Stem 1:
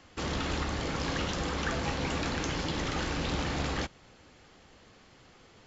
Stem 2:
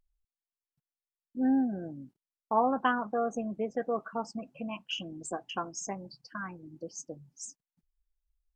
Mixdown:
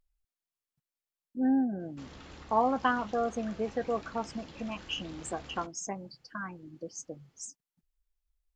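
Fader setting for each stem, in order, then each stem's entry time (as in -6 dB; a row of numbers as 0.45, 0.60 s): -17.0, 0.0 dB; 1.80, 0.00 s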